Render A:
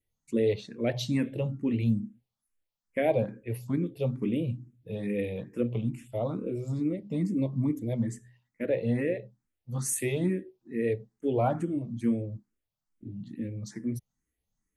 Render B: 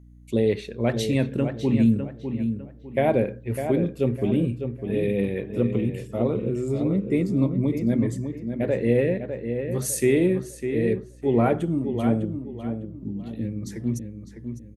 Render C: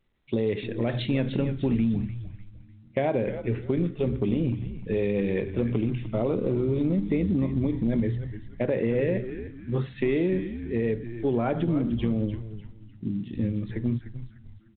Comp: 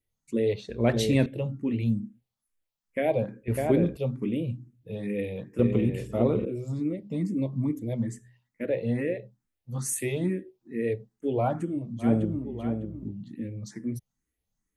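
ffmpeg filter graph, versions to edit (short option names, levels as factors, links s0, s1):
-filter_complex "[1:a]asplit=4[s0][s1][s2][s3];[0:a]asplit=5[s4][s5][s6][s7][s8];[s4]atrim=end=0.692[s9];[s0]atrim=start=0.688:end=1.262[s10];[s5]atrim=start=1.258:end=3.482[s11];[s1]atrim=start=3.478:end=3.972[s12];[s6]atrim=start=3.968:end=5.592[s13];[s2]atrim=start=5.588:end=6.452[s14];[s7]atrim=start=6.448:end=12.14[s15];[s3]atrim=start=11.98:end=13.17[s16];[s8]atrim=start=13.01[s17];[s9][s10]acrossfade=d=0.004:c1=hsin:c2=hsin[s18];[s18][s11]acrossfade=d=0.004:c1=hsin:c2=hsin[s19];[s19][s12]acrossfade=d=0.004:c1=hsin:c2=hsin[s20];[s20][s13]acrossfade=d=0.004:c1=hsin:c2=hsin[s21];[s21][s14]acrossfade=d=0.004:c1=hsin:c2=hsin[s22];[s22][s15]acrossfade=d=0.004:c1=hsin:c2=hsin[s23];[s23][s16]acrossfade=d=0.16:c1=tri:c2=tri[s24];[s24][s17]acrossfade=d=0.16:c1=tri:c2=tri"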